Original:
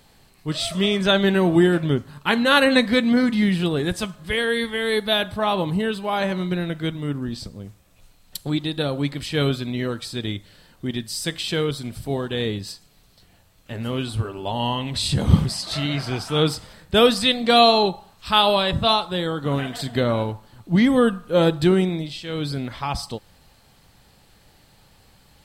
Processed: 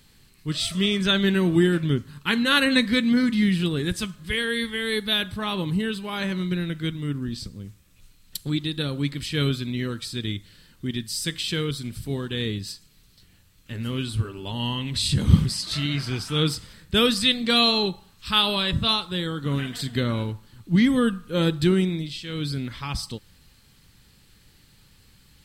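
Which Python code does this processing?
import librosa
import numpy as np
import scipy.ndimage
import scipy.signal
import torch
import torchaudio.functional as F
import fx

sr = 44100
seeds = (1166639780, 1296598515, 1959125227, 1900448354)

y = fx.peak_eq(x, sr, hz=700.0, db=-15.0, octaves=1.1)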